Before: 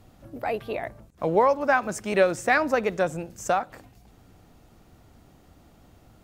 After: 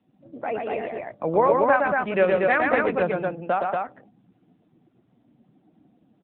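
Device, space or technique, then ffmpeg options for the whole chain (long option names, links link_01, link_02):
mobile call with aggressive noise cancelling: -filter_complex "[0:a]asplit=3[link_01][link_02][link_03];[link_01]afade=type=out:start_time=1.61:duration=0.02[link_04];[link_02]lowpass=8800,afade=type=in:start_time=1.61:duration=0.02,afade=type=out:start_time=3.36:duration=0.02[link_05];[link_03]afade=type=in:start_time=3.36:duration=0.02[link_06];[link_04][link_05][link_06]amix=inputs=3:normalize=0,highpass=frequency=140:width=0.5412,highpass=frequency=140:width=1.3066,aecho=1:1:118|130|236:0.668|0.141|0.708,afftdn=noise_reduction=15:noise_floor=-45" -ar 8000 -c:a libopencore_amrnb -b:a 10200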